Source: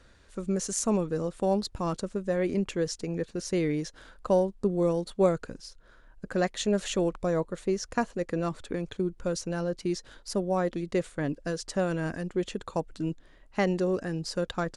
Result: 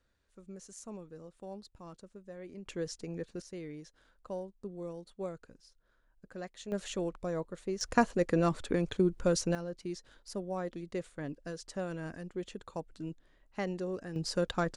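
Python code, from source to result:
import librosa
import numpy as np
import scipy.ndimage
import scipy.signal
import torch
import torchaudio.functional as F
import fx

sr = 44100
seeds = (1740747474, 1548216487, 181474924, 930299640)

y = fx.gain(x, sr, db=fx.steps((0.0, -19.0), (2.66, -8.0), (3.42, -16.0), (6.72, -8.0), (7.81, 2.0), (9.55, -9.5), (14.16, -1.0)))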